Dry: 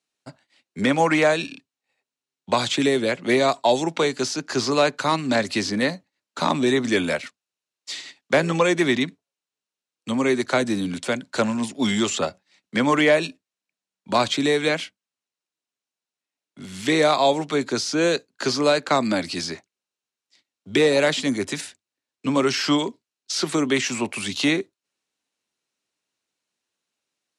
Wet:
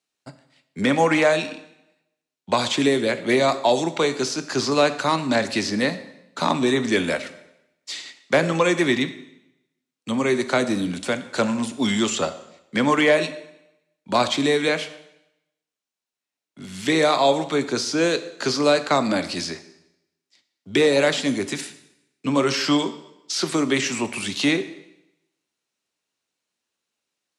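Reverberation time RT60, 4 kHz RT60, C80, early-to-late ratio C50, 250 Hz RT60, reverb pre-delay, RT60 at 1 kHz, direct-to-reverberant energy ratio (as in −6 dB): 0.85 s, 0.85 s, 15.5 dB, 13.5 dB, 0.85 s, 6 ms, 0.85 s, 10.5 dB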